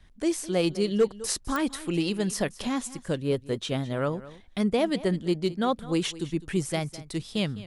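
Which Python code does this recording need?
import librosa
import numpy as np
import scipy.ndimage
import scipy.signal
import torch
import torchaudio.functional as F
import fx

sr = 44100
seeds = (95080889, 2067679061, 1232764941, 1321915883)

y = fx.fix_declip(x, sr, threshold_db=-14.5)
y = fx.fix_declick_ar(y, sr, threshold=10.0)
y = fx.fix_echo_inverse(y, sr, delay_ms=207, level_db=-17.5)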